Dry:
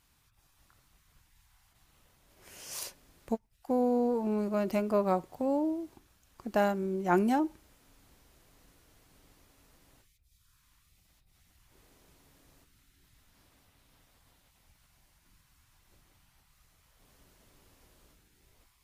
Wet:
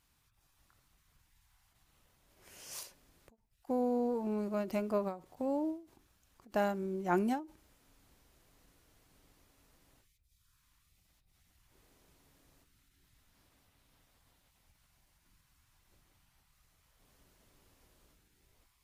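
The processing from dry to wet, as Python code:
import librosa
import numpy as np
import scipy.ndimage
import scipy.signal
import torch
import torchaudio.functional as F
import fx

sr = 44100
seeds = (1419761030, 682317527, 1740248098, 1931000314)

y = fx.end_taper(x, sr, db_per_s=160.0)
y = F.gain(torch.from_numpy(y), -4.5).numpy()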